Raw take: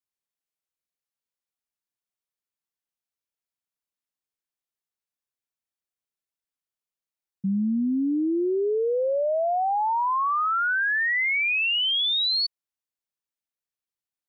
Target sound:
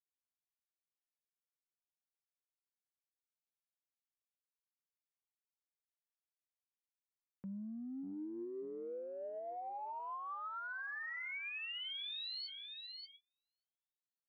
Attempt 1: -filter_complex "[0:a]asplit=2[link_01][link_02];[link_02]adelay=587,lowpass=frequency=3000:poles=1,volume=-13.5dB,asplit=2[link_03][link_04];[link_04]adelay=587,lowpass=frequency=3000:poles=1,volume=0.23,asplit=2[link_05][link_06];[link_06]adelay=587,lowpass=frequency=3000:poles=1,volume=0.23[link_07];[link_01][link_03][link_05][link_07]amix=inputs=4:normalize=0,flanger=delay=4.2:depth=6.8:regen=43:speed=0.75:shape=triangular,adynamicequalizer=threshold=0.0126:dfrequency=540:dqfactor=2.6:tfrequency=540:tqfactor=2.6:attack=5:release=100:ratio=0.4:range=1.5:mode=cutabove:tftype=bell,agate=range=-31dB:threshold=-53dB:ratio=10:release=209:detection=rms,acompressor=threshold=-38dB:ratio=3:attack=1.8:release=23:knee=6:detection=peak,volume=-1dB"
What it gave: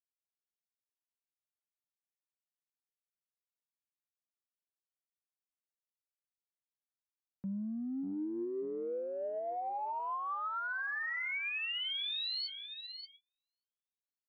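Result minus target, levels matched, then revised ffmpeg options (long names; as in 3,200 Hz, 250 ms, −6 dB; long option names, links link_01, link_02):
downward compressor: peak gain reduction −6.5 dB
-filter_complex "[0:a]asplit=2[link_01][link_02];[link_02]adelay=587,lowpass=frequency=3000:poles=1,volume=-13.5dB,asplit=2[link_03][link_04];[link_04]adelay=587,lowpass=frequency=3000:poles=1,volume=0.23,asplit=2[link_05][link_06];[link_06]adelay=587,lowpass=frequency=3000:poles=1,volume=0.23[link_07];[link_01][link_03][link_05][link_07]amix=inputs=4:normalize=0,flanger=delay=4.2:depth=6.8:regen=43:speed=0.75:shape=triangular,adynamicequalizer=threshold=0.0126:dfrequency=540:dqfactor=2.6:tfrequency=540:tqfactor=2.6:attack=5:release=100:ratio=0.4:range=1.5:mode=cutabove:tftype=bell,agate=range=-31dB:threshold=-53dB:ratio=10:release=209:detection=rms,acompressor=threshold=-48dB:ratio=3:attack=1.8:release=23:knee=6:detection=peak,volume=-1dB"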